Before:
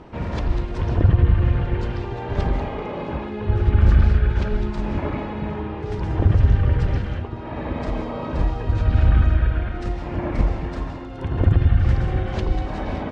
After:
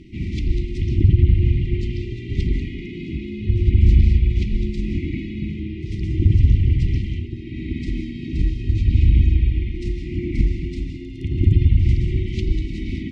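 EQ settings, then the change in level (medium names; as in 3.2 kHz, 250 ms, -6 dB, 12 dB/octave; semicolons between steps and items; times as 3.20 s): brick-wall FIR band-stop 390–1900 Hz; +1.5 dB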